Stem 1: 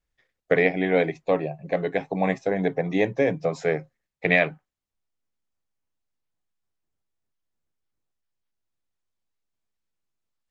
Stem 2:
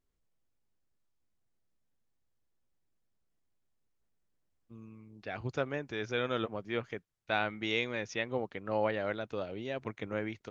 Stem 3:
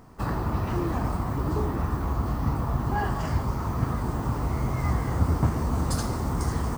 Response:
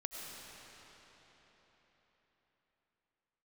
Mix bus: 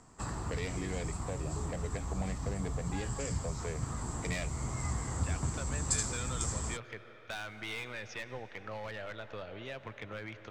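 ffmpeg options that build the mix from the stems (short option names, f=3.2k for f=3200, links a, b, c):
-filter_complex "[0:a]asoftclip=type=tanh:threshold=-18.5dB,volume=-6dB[a];[1:a]equalizer=f=280:w=0.48:g=-11.5,asoftclip=type=hard:threshold=-35.5dB,adynamicequalizer=threshold=0.00178:dfrequency=2900:dqfactor=0.7:tfrequency=2900:tqfactor=0.7:attack=5:release=100:ratio=0.375:range=3:mode=cutabove:tftype=highshelf,volume=2.5dB,asplit=2[b][c];[c]volume=-8.5dB[d];[2:a]lowpass=f=7.6k:t=q:w=15,tiltshelf=f=1.4k:g=-3.5,volume=-6dB[e];[3:a]atrim=start_sample=2205[f];[d][f]afir=irnorm=-1:irlink=0[g];[a][b][e][g]amix=inputs=4:normalize=0,acrossover=split=160|3000[h][i][j];[i]acompressor=threshold=-40dB:ratio=4[k];[h][k][j]amix=inputs=3:normalize=0,highshelf=f=5.9k:g=-7.5"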